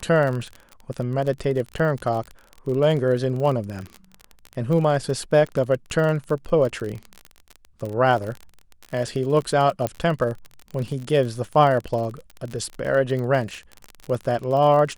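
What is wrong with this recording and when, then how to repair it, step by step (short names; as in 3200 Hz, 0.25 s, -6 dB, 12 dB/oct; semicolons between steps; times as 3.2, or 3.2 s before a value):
crackle 36/s -27 dBFS
9.87 pop -10 dBFS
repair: de-click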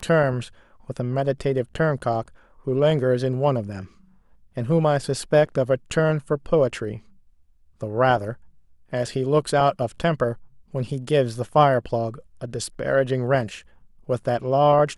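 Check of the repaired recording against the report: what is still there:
none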